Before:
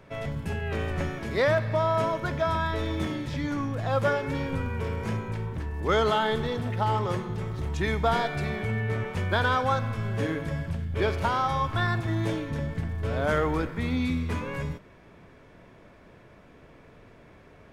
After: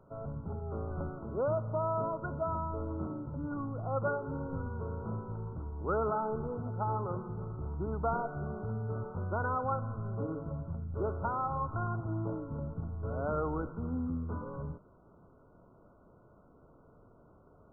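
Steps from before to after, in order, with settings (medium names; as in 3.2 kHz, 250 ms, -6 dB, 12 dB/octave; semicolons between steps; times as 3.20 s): brick-wall FIR low-pass 1.5 kHz; trim -7.5 dB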